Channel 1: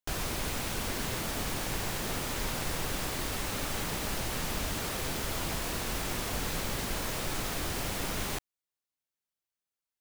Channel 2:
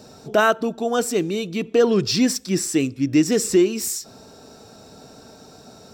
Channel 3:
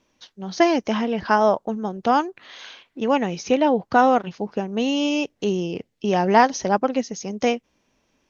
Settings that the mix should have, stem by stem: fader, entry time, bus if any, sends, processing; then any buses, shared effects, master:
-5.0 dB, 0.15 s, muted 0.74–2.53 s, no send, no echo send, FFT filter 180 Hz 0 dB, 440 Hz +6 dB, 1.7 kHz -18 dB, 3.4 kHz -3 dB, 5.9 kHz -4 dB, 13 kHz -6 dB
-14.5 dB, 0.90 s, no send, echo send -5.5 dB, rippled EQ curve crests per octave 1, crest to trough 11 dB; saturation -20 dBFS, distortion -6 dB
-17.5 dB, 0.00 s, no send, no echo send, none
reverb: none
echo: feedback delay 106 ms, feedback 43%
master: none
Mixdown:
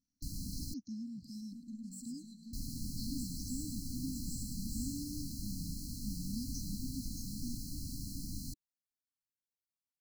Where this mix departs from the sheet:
stem 2 -14.5 dB -> -23.0 dB; master: extra brick-wall FIR band-stop 300–4000 Hz

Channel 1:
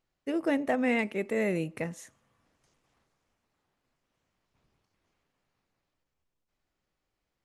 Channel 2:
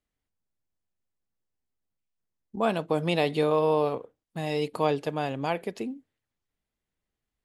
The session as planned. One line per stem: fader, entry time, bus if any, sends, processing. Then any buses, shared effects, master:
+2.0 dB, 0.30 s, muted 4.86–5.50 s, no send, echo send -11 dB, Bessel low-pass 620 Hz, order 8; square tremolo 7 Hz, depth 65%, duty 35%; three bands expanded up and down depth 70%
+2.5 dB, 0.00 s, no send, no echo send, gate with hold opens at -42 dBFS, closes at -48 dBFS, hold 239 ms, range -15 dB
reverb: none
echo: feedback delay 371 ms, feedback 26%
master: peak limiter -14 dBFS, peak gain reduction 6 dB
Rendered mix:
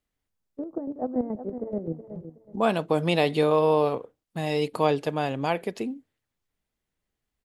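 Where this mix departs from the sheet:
stem 2: missing gate with hold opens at -42 dBFS, closes at -48 dBFS, hold 239 ms, range -15 dB; master: missing peak limiter -14 dBFS, peak gain reduction 6 dB

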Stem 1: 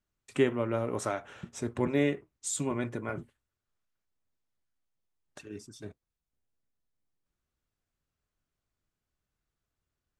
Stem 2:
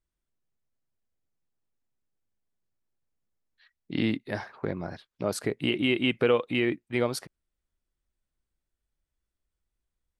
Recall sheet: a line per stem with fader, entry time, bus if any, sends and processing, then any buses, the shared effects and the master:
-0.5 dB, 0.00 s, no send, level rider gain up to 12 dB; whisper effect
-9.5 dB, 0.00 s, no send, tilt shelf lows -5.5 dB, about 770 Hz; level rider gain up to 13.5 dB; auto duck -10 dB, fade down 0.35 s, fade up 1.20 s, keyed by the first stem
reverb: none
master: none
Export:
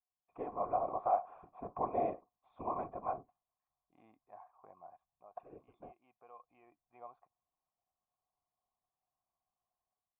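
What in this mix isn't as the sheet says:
stem 2 -9.5 dB -> -17.5 dB; master: extra cascade formant filter a

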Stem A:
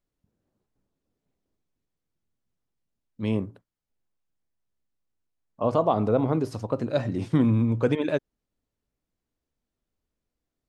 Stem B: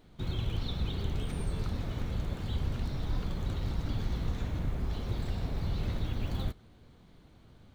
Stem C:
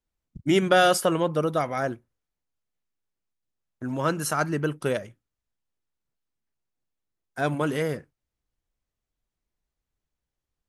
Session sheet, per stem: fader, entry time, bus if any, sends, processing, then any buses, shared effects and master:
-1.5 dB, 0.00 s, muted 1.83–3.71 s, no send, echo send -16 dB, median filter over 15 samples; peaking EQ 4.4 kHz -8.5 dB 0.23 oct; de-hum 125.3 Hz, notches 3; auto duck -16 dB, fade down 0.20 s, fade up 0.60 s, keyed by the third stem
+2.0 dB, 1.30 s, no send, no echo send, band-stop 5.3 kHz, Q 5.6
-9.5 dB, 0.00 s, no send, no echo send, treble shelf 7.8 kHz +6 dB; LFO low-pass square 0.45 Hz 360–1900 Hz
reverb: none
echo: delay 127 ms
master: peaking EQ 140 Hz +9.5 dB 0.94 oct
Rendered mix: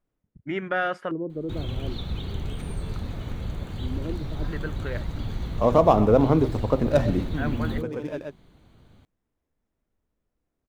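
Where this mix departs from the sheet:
stem A -1.5 dB -> +5.0 dB; master: missing peaking EQ 140 Hz +9.5 dB 0.94 oct

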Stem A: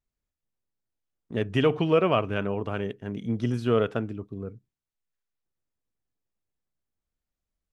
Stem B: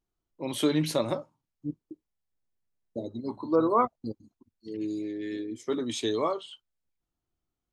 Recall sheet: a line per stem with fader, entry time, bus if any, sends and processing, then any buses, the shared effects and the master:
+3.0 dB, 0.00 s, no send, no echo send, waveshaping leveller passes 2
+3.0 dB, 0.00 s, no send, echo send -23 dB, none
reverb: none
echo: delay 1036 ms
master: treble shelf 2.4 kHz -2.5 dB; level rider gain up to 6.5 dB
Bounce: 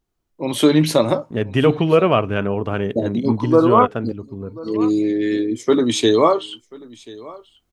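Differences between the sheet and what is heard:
stem A: missing waveshaping leveller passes 2; stem B +3.0 dB -> +9.0 dB

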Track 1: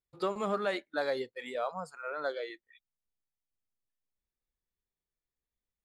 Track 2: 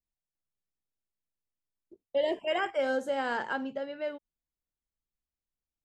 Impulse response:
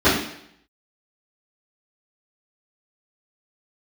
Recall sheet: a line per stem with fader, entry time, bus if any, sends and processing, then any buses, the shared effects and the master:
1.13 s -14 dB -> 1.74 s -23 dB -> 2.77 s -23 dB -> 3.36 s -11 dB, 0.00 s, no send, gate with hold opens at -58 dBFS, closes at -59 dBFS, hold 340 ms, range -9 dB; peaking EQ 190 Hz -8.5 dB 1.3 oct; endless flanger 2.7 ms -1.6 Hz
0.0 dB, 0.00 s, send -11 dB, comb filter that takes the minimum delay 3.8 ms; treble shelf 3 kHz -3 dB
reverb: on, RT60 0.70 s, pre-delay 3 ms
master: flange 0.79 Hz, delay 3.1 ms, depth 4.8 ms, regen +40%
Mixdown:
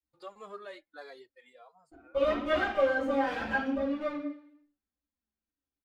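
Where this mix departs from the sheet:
stem 1 -14.0 dB -> -5.5 dB; stem 2 0.0 dB -> -6.5 dB

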